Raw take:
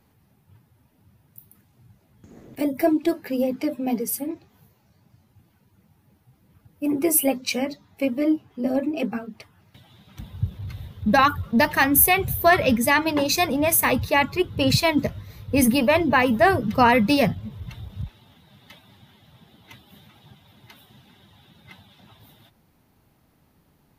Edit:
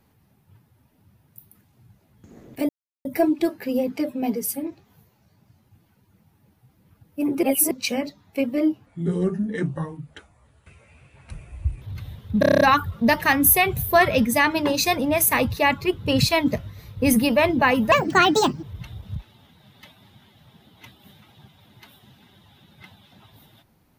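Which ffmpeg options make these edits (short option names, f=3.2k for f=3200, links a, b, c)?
-filter_complex "[0:a]asplit=15[a][b][c][d][e][f][g][h][i][j][k][l][m][n][o];[a]atrim=end=2.69,asetpts=PTS-STARTPTS,afade=t=out:st=2.686:d=0.004:c=hsin,apad=pad_dur=0.36[p];[b]atrim=start=2.69:end=7.072,asetpts=PTS-STARTPTS,afade=t=in:d=0.004:c=hsin[q];[c]atrim=start=7.068:end=7.352,asetpts=PTS-STARTPTS,areverse[r];[d]atrim=start=7.348:end=8.504[s];[e]atrim=start=8.5:end=10.54,asetpts=PTS-STARTPTS,asetrate=30429,aresample=44100[t];[f]atrim=start=10.536:end=11.152[u];[g]atrim=start=11.118:end=11.152[v];[h]atrim=start=11.118:end=11.152[w];[i]atrim=start=11.118:end=11.152[x];[j]atrim=start=11.118:end=11.152[y];[k]atrim=start=11.118:end=11.152[z];[l]atrim=start=11.118:end=11.152[aa];[m]atrim=start=11.118:end=16.434[ab];[n]atrim=start=16.43:end=17.5,asetpts=PTS-STARTPTS,asetrate=66150,aresample=44100[ac];[o]atrim=start=17.496[ad];[p][q]concat=n=2:v=0:a=1[ae];[ae][r]acrossfade=d=0.004:c1=hsin:c2=hsin[af];[af][s]acrossfade=d=0.004:c1=hsin:c2=hsin[ag];[ag][t]acrossfade=d=0.004:c1=hsin:c2=hsin[ah];[ah][u]acrossfade=d=0.004:c1=hsin:c2=hsin[ai];[ai][v]acrossfade=d=0.004:c1=hsin:c2=hsin[aj];[aj][w]acrossfade=d=0.004:c1=hsin:c2=hsin[ak];[ak][x]acrossfade=d=0.004:c1=hsin:c2=hsin[al];[al][y]acrossfade=d=0.004:c1=hsin:c2=hsin[am];[am][z]acrossfade=d=0.004:c1=hsin:c2=hsin[an];[an][aa]acrossfade=d=0.004:c1=hsin:c2=hsin[ao];[ao][ab]acrossfade=d=0.004:c1=hsin:c2=hsin[ap];[ap][ac]acrossfade=d=0.004:c1=hsin:c2=hsin[aq];[aq][ad]acrossfade=d=0.004:c1=hsin:c2=hsin"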